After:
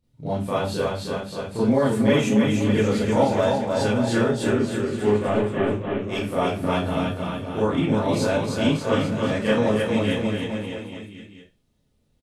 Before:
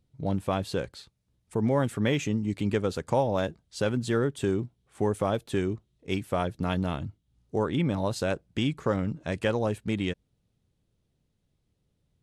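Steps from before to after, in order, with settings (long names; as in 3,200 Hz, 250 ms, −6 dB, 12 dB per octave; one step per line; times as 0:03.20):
0:04.47–0:05.68: variable-slope delta modulation 16 kbit/s
on a send: bouncing-ball delay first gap 310 ms, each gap 0.9×, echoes 5
on the sum: four-comb reverb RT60 0.3 s, combs from 26 ms, DRR −9 dB
level −4.5 dB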